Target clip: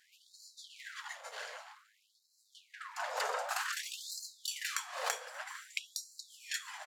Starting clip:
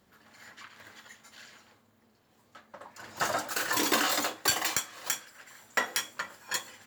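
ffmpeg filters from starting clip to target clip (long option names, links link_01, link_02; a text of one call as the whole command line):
ffmpeg -i in.wav -filter_complex "[0:a]aeval=exprs='if(lt(val(0),0),0.251*val(0),val(0))':channel_layout=same,lowpass=11000,tiltshelf=frequency=970:gain=8.5,acompressor=threshold=-38dB:ratio=16,afftfilt=real='re*lt(hypot(re,im),0.0224)':imag='im*lt(hypot(re,im),0.0224)':win_size=1024:overlap=0.75,asplit=2[link_01][link_02];[link_02]adelay=244,lowpass=frequency=1900:poles=1,volume=-21dB,asplit=2[link_03][link_04];[link_04]adelay=244,lowpass=frequency=1900:poles=1,volume=0.46,asplit=2[link_05][link_06];[link_06]adelay=244,lowpass=frequency=1900:poles=1,volume=0.46[link_07];[link_03][link_05][link_07]amix=inputs=3:normalize=0[link_08];[link_01][link_08]amix=inputs=2:normalize=0,afftfilt=real='re*gte(b*sr/1024,420*pow(4000/420,0.5+0.5*sin(2*PI*0.53*pts/sr)))':imag='im*gte(b*sr/1024,420*pow(4000/420,0.5+0.5*sin(2*PI*0.53*pts/sr)))':win_size=1024:overlap=0.75,volume=15dB" out.wav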